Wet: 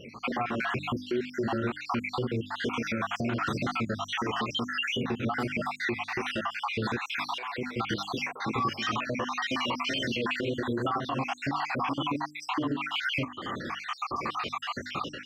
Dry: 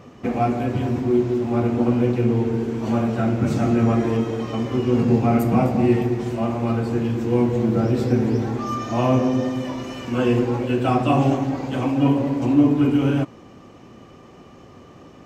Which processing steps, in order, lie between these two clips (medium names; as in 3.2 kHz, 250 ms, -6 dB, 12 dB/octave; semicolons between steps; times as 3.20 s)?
random holes in the spectrogram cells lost 63%; level rider gain up to 12 dB; high-order bell 2.2 kHz +13.5 dB 2.7 oct; wow and flutter 73 cents; hum notches 50/100/150/200/250/300 Hz; compression 3:1, threshold -28 dBFS, peak gain reduction 17 dB; bass shelf 76 Hz -10 dB; peak limiter -21 dBFS, peak gain reduction 10 dB; 6.98–9.07 s: bands offset in time highs, lows 200 ms, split 610 Hz